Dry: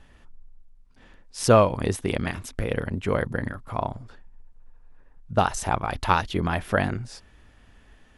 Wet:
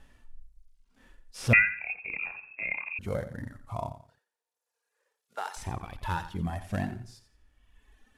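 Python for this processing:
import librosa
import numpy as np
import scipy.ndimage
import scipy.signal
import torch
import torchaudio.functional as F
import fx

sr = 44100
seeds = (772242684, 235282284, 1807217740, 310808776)

y = fx.cvsd(x, sr, bps=64000)
y = fx.cheby1_highpass(y, sr, hz=460.0, order=3, at=(3.93, 5.57))
y = fx.dereverb_blind(y, sr, rt60_s=1.5)
y = fx.hpss(y, sr, part='percussive', gain_db=-17)
y = fx.echo_feedback(y, sr, ms=87, feedback_pct=28, wet_db=-12.0)
y = fx.freq_invert(y, sr, carrier_hz=2600, at=(1.53, 2.99))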